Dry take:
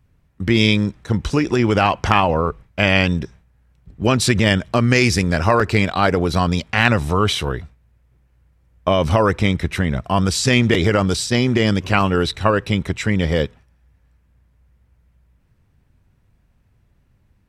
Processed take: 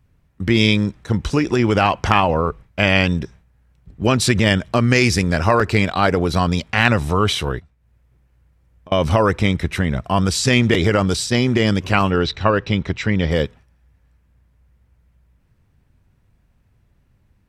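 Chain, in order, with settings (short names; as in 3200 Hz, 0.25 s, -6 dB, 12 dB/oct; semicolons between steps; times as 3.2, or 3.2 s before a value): 7.59–8.92 compressor 5:1, threshold -46 dBFS, peak gain reduction 28.5 dB; 12.11–13.31 LPF 5900 Hz 24 dB/oct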